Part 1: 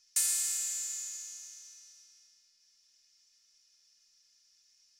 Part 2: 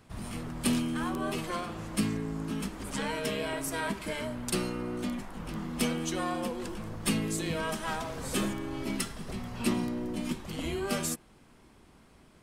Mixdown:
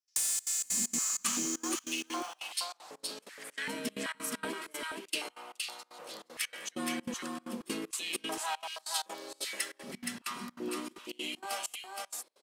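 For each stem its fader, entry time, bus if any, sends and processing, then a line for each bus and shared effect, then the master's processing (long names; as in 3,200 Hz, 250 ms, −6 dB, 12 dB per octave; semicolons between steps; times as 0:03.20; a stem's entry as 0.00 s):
0.0 dB, 0.00 s, no send, echo send −3.5 dB, high-pass filter 380 Hz; leveller curve on the samples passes 3; downward compressor 3 to 1, threshold −33 dBFS, peak gain reduction 10 dB
−9.5 dB, 0.60 s, no send, echo send −4 dB, high-shelf EQ 2,500 Hz +9 dB; high-pass on a step sequencer 2.6 Hz 230–4,100 Hz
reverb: not used
echo: single-tap delay 470 ms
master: gate pattern ".xxxx.xx.xx.xxx" 193 BPM −24 dB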